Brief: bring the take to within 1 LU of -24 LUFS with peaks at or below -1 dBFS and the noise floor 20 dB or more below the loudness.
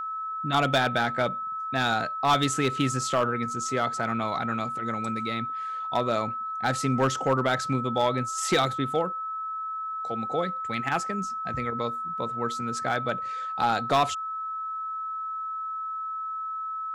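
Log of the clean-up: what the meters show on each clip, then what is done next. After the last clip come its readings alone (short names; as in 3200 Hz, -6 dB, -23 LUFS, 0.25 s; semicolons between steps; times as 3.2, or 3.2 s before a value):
clipped 0.4%; flat tops at -15.5 dBFS; steady tone 1300 Hz; tone level -30 dBFS; loudness -27.5 LUFS; peak -15.5 dBFS; loudness target -24.0 LUFS
-> clip repair -15.5 dBFS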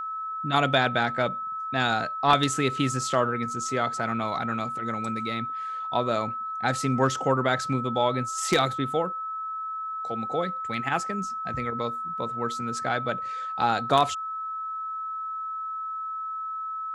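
clipped 0.0%; steady tone 1300 Hz; tone level -30 dBFS
-> notch 1300 Hz, Q 30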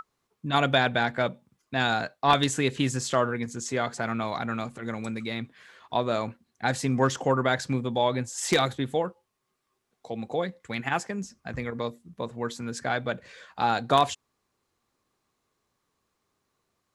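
steady tone none; loudness -28.0 LUFS; peak -6.0 dBFS; loudness target -24.0 LUFS
-> gain +4 dB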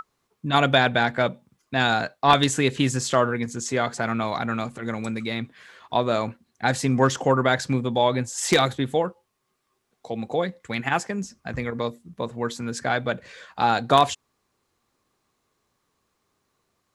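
loudness -24.0 LUFS; peak -2.0 dBFS; noise floor -75 dBFS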